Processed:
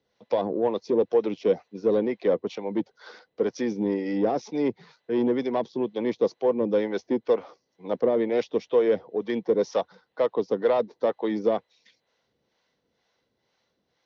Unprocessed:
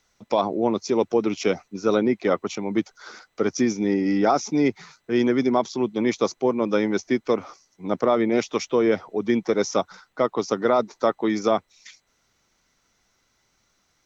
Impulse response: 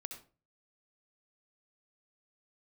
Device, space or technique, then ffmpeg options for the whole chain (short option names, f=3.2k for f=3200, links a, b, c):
guitar amplifier with harmonic tremolo: -filter_complex "[0:a]acrossover=split=520[a][b];[a]aeval=exprs='val(0)*(1-0.7/2+0.7/2*cos(2*PI*2.1*n/s))':c=same[c];[b]aeval=exprs='val(0)*(1-0.7/2-0.7/2*cos(2*PI*2.1*n/s))':c=same[d];[c][d]amix=inputs=2:normalize=0,asoftclip=type=tanh:threshold=-18dB,highpass=93,equalizer=f=96:t=q:w=4:g=-4,equalizer=f=490:t=q:w=4:g=9,equalizer=f=1.3k:t=q:w=4:g=-9,equalizer=f=2.3k:t=q:w=4:g=-6,lowpass=f=4.3k:w=0.5412,lowpass=f=4.3k:w=1.3066"